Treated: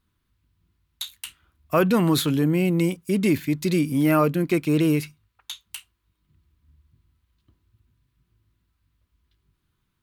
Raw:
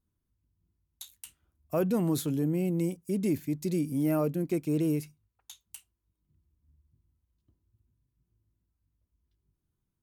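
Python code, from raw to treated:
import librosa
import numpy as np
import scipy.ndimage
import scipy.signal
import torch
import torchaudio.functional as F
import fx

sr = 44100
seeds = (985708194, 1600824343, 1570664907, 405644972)

y = fx.band_shelf(x, sr, hz=2100.0, db=9.5, octaves=2.4)
y = y * librosa.db_to_amplitude(7.5)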